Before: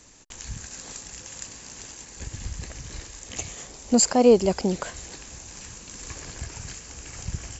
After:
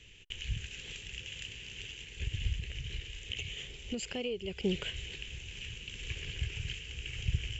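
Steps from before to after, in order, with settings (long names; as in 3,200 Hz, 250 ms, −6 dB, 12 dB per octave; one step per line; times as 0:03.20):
drawn EQ curve 120 Hz 0 dB, 280 Hz −15 dB, 410 Hz −4 dB, 640 Hz −19 dB, 1,100 Hz −21 dB, 3,000 Hz +11 dB, 4,400 Hz −14 dB, 7,600 Hz −17 dB
0:02.54–0:04.64: downward compressor 8 to 1, threshold −35 dBFS, peak gain reduction 16 dB
level +1 dB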